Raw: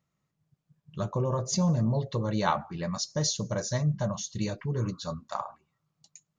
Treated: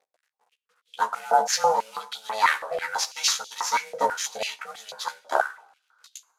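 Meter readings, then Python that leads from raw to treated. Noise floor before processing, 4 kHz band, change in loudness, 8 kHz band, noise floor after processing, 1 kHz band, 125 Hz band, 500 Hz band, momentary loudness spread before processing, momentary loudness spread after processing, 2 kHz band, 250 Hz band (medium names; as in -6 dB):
-82 dBFS, +7.5 dB, +4.5 dB, +5.5 dB, -81 dBFS, +11.5 dB, under -30 dB, +3.5 dB, 10 LU, 12 LU, +14.0 dB, -19.0 dB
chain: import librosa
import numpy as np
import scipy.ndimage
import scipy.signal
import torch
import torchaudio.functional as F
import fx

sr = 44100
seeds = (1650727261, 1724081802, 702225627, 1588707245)

y = fx.cvsd(x, sr, bps=64000)
y = y * np.sin(2.0 * np.pi * 330.0 * np.arange(len(y)) / sr)
y = fx.doubler(y, sr, ms=14.0, db=-4.5)
y = fx.rev_double_slope(y, sr, seeds[0], early_s=0.56, late_s=2.9, knee_db=-20, drr_db=17.0)
y = fx.filter_held_highpass(y, sr, hz=6.1, low_hz=660.0, high_hz=3400.0)
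y = y * 10.0 ** (7.5 / 20.0)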